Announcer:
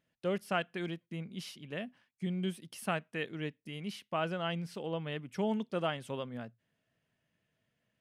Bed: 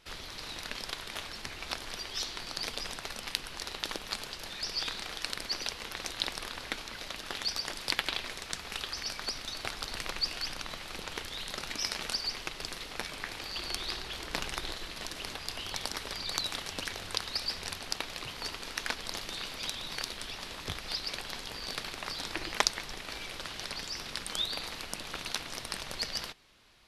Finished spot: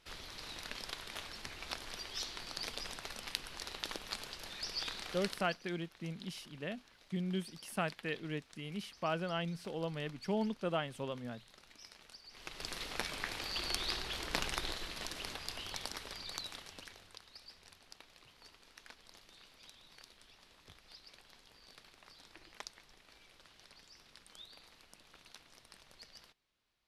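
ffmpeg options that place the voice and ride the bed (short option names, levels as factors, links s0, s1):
-filter_complex "[0:a]adelay=4900,volume=0.794[s0];[1:a]volume=5.96,afade=t=out:st=5.21:d=0.37:silence=0.149624,afade=t=in:st=12.3:d=0.53:silence=0.0891251,afade=t=out:st=14.43:d=2.74:silence=0.1[s1];[s0][s1]amix=inputs=2:normalize=0"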